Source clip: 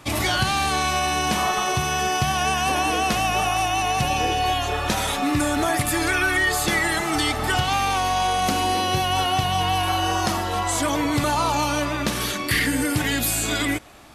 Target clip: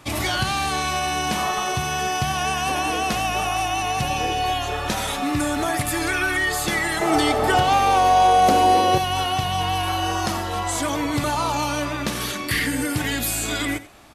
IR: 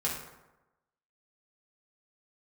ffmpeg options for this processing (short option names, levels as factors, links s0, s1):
-filter_complex "[0:a]asettb=1/sr,asplit=3[s0][s1][s2];[s0]atrim=end=7.014[s3];[s1]atrim=start=7.01:end=8.98,asetpts=PTS-STARTPTS,afade=t=in:d=0.004:c=qsin,afade=t=out:st=1.966:d=0.004:c=qsin,equalizer=f=530:t=o:w=1.6:g=12[s4];[s2]atrim=start=8.976[s5];[s3][s4]acrossfade=d=0.004:c1=hsin:c2=qsin[s6];[s6][s5]acrossfade=d=0.004:c1=qsin:c2=hsin,aecho=1:1:88:0.15,volume=0.841"